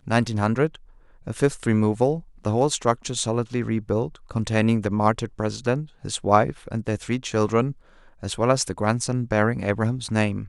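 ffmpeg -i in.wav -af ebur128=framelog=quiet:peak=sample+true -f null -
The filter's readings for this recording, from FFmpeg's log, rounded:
Integrated loudness:
  I:         -23.7 LUFS
  Threshold: -34.0 LUFS
Loudness range:
  LRA:         1.1 LU
  Threshold: -44.0 LUFS
  LRA low:   -24.7 LUFS
  LRA high:  -23.6 LUFS
Sample peak:
  Peak:       -2.4 dBFS
True peak:
  Peak:       -2.4 dBFS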